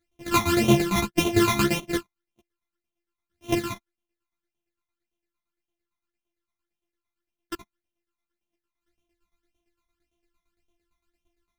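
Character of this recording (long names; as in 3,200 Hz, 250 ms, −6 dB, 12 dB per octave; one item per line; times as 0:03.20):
a buzz of ramps at a fixed pitch in blocks of 128 samples
phaser sweep stages 12, 1.8 Hz, lowest notch 490–1,600 Hz
tremolo saw down 8.8 Hz, depth 80%
a shimmering, thickened sound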